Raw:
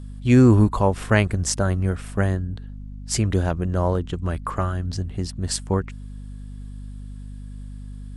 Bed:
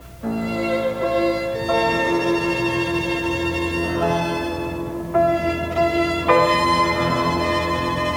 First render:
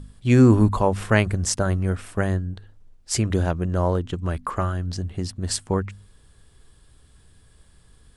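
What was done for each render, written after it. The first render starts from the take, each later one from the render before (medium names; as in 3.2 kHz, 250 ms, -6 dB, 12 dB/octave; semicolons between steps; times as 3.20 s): de-hum 50 Hz, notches 5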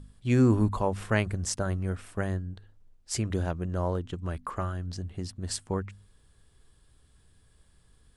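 trim -7.5 dB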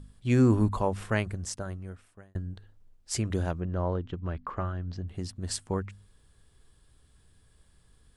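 0.84–2.35 s: fade out; 3.60–5.08 s: distance through air 190 m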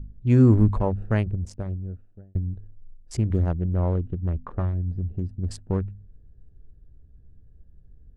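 local Wiener filter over 41 samples; tilt EQ -2.5 dB/octave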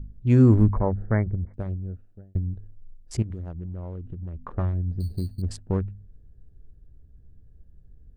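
0.66–1.54 s: brick-wall FIR low-pass 2.3 kHz; 3.22–4.46 s: compression, threshold -31 dBFS; 5.00–5.42 s: sample-rate reducer 4.4 kHz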